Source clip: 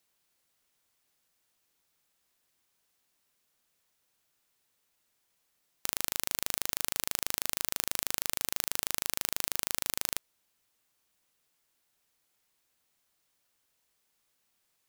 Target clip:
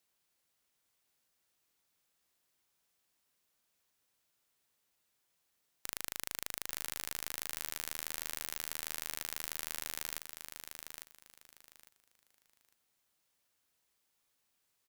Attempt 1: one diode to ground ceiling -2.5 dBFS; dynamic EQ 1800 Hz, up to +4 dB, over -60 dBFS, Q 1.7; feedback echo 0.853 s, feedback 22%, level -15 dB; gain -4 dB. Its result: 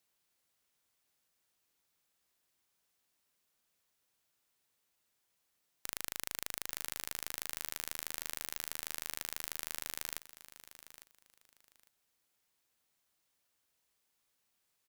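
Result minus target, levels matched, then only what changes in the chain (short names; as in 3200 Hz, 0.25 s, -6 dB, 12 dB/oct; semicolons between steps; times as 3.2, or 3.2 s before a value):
echo-to-direct -8 dB
change: feedback echo 0.853 s, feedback 22%, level -7 dB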